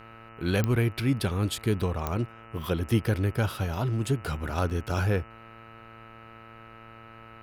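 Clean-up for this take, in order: de-click; de-hum 113.2 Hz, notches 26; band-stop 1.3 kHz, Q 30

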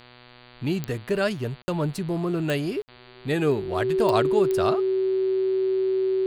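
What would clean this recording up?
de-click; de-hum 122.6 Hz, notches 38; band-stop 380 Hz, Q 30; interpolate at 1.62/2.82 s, 60 ms

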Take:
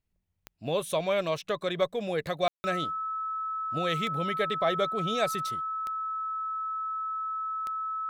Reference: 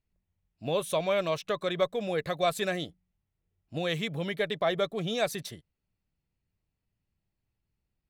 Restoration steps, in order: de-click; band-stop 1.3 kHz, Q 30; room tone fill 2.48–2.64 s

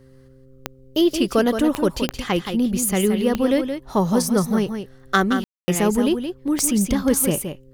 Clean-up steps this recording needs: de-click; de-hum 131.7 Hz, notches 4; room tone fill 5.44–5.68 s; inverse comb 172 ms -8 dB

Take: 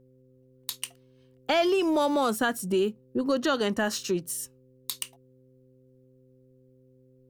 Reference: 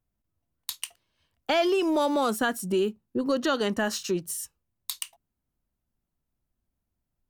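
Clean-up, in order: de-hum 129 Hz, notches 4

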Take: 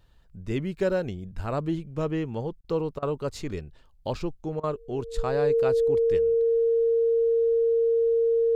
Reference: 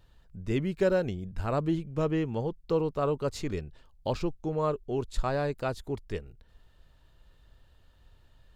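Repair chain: band-stop 460 Hz, Q 30; interpolate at 2.61/2.99/4.60 s, 33 ms

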